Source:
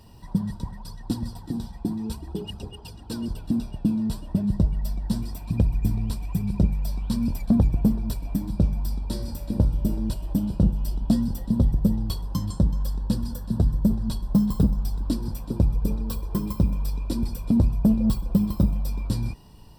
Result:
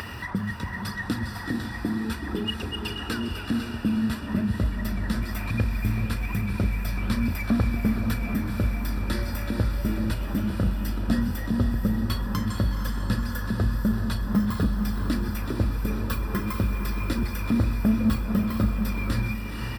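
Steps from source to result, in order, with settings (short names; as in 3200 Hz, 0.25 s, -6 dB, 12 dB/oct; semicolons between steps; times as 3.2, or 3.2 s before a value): HPF 58 Hz 24 dB/oct; band shelf 1900 Hz +10.5 dB 1.3 oct; doubler 37 ms -13 dB; in parallel at -1.5 dB: limiter -17.5 dBFS, peak gain reduction 10.5 dB; on the sum: thirty-one-band EQ 160 Hz -10 dB, 1250 Hz +10 dB, 2000 Hz +7 dB, 8000 Hz -4 dB; upward compressor, threshold -20 dBFS; small resonant body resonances 1700/3500 Hz, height 10 dB; on a send: diffused feedback echo 0.494 s, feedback 48%, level -6 dB; on the sum: gain -5 dB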